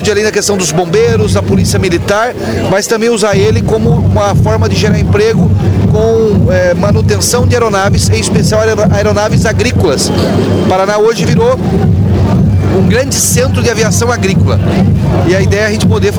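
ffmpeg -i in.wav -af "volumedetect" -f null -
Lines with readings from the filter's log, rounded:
mean_volume: -8.5 dB
max_volume: -1.4 dB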